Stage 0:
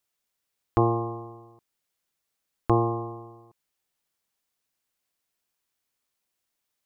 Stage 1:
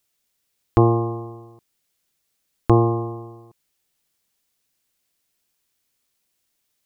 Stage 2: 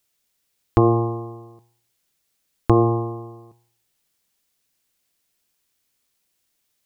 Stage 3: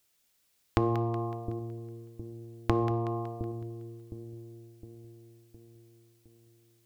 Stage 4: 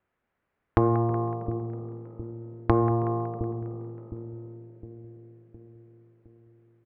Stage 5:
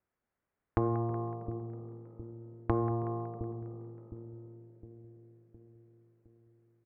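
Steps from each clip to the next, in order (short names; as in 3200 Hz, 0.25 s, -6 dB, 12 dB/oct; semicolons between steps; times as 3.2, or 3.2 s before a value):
bell 1000 Hz -5.5 dB 2.1 oct; gain +8.5 dB
de-hum 117.6 Hz, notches 11; gain +1 dB
compressor 3:1, threshold -27 dBFS, peak gain reduction 12.5 dB; split-band echo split 450 Hz, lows 0.712 s, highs 0.186 s, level -9.5 dB; reverb, pre-delay 3 ms, DRR 13.5 dB
LPF 1800 Hz 24 dB/oct; frequency-shifting echo 0.321 s, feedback 58%, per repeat +51 Hz, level -22.5 dB; added harmonics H 4 -22 dB, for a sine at -7.5 dBFS; gain +5 dB
air absorption 260 m; gain -7.5 dB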